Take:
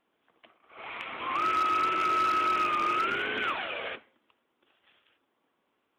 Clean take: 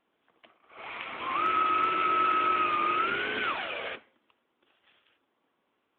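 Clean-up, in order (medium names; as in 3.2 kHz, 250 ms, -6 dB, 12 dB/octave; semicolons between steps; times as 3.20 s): clip repair -22 dBFS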